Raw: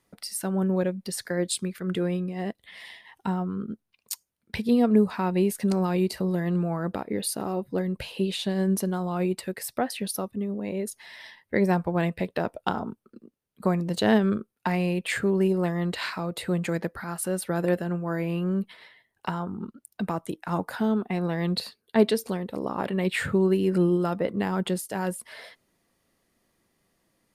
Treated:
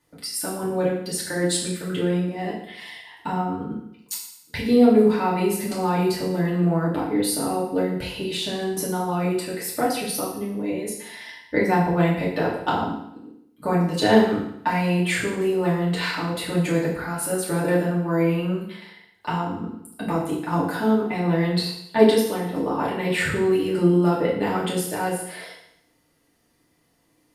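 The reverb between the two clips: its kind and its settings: FDN reverb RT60 0.74 s, low-frequency decay 1×, high-frequency decay 1×, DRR -6.5 dB; gain -2 dB

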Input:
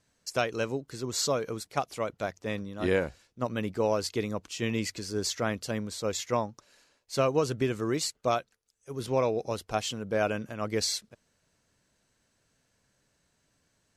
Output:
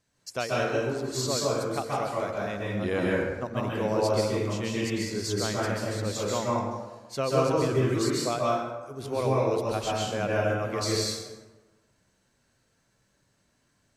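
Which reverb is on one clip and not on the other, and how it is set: plate-style reverb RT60 1.2 s, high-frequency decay 0.55×, pre-delay 0.12 s, DRR -5 dB; gain -3.5 dB

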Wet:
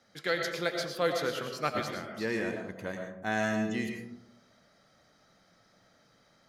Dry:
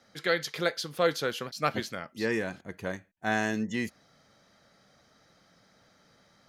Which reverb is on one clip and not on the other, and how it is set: digital reverb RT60 0.83 s, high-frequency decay 0.35×, pre-delay 65 ms, DRR 3 dB; gain -3.5 dB

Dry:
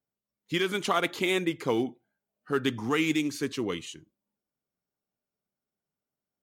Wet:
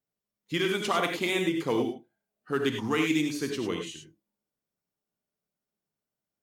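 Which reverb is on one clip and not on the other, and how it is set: non-linear reverb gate 0.12 s rising, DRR 3.5 dB; gain -1.5 dB

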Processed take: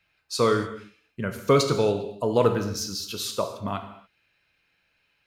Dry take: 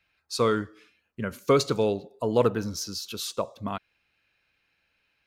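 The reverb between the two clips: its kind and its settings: non-linear reverb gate 0.31 s falling, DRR 5.5 dB; gain +1.5 dB

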